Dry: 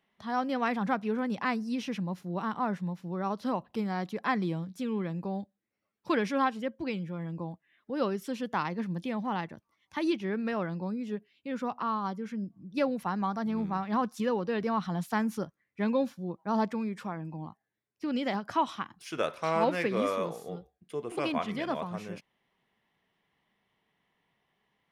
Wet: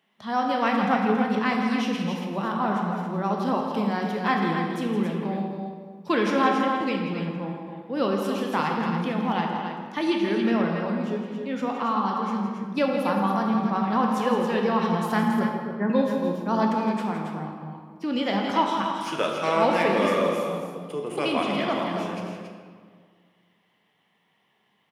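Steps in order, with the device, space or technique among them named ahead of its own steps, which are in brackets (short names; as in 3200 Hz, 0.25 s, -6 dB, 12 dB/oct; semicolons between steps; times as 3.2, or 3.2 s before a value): 15.23–15.9 Chebyshev band-pass 110–1900 Hz, order 5; stadium PA (HPF 140 Hz; bell 3000 Hz +4 dB 0.33 oct; loudspeakers at several distances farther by 57 m -10 dB, 95 m -7 dB; reverb RT60 1.8 s, pre-delay 14 ms, DRR 2 dB); gain +4 dB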